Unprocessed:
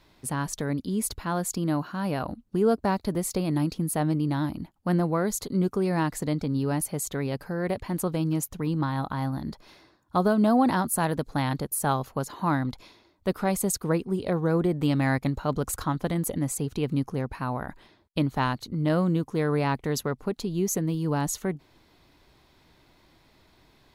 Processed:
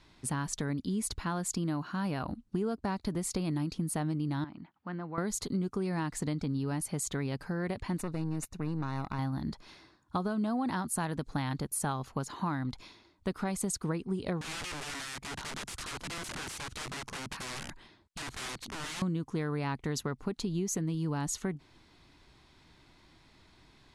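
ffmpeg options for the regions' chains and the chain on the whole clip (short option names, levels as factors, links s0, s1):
-filter_complex "[0:a]asettb=1/sr,asplit=3[s0][s1][s2];[s0]atrim=end=4.444[s3];[s1]atrim=start=4.44:end=5.18,asetpts=PTS-STARTPTS,afade=t=in:d=0.004:c=qsin,afade=t=out:st=0.736:d=0.004:c=qsin,equalizer=f=1500:t=o:w=2.1:g=7.5,acompressor=threshold=0.00126:ratio=1.5:attack=3.2:release=140:knee=1:detection=peak,highpass=140,lowpass=3500[s4];[s2]atrim=start=5.176[s5];[s3][s4]acrossfade=d=0.004:c1=hsin:c2=qsin[s6];[s6][s5]acrossfade=d=0.004:c1=qsin:c2=hsin,asettb=1/sr,asplit=3[s7][s8][s9];[s7]atrim=end=7.984[s10];[s8]atrim=start=7.98:end=9.19,asetpts=PTS-STARTPTS,afade=t=in:d=0.004:c=qsin,afade=t=out:st=1.206:d=0.004:c=qsin,aeval=exprs='(tanh(17.8*val(0)+0.75)-tanh(0.75))/17.8':c=same,asuperstop=centerf=3200:order=8:qfactor=6.7[s11];[s9]atrim=start=9.186[s12];[s10][s11]acrossfade=d=0.004:c1=hsin:c2=qsin[s13];[s13][s12]acrossfade=d=0.004:c1=qsin:c2=hsin,asettb=1/sr,asplit=3[s14][s15][s16];[s14]atrim=end=14.414[s17];[s15]atrim=start=14.41:end=19.02,asetpts=PTS-STARTPTS,afade=t=in:d=0.004:c=qsin,afade=t=out:st=4.606:d=0.004:c=qsin,acompressor=threshold=0.0398:ratio=2:attack=3.2:release=140:knee=1:detection=peak,aeval=exprs='(mod(47.3*val(0)+1,2)-1)/47.3':c=same[s18];[s16]atrim=start=19.016[s19];[s17][s18]acrossfade=d=0.004:c1=hsin:c2=qsin[s20];[s20][s19]acrossfade=d=0.004:c1=qsin:c2=hsin,lowpass=f=10000:w=0.5412,lowpass=f=10000:w=1.3066,equalizer=f=550:t=o:w=0.97:g=-6,acompressor=threshold=0.0355:ratio=6"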